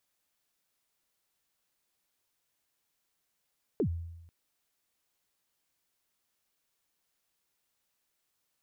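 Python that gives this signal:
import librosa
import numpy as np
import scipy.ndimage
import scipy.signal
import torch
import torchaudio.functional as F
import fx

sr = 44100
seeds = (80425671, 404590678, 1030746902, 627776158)

y = fx.drum_kick(sr, seeds[0], length_s=0.49, level_db=-23.5, start_hz=490.0, end_hz=84.0, sweep_ms=83.0, decay_s=0.98, click=False)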